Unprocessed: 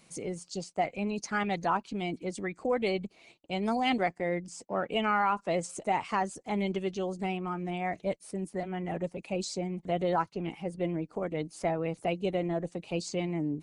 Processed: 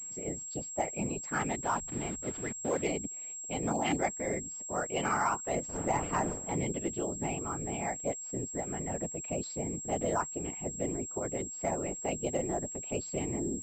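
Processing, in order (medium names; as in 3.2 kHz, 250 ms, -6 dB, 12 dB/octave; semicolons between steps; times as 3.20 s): 1.61–2.82 s: send-on-delta sampling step -37.5 dBFS; 5.68–6.53 s: wind noise 450 Hz -33 dBFS; whisper effect; class-D stage that switches slowly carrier 7.6 kHz; trim -3 dB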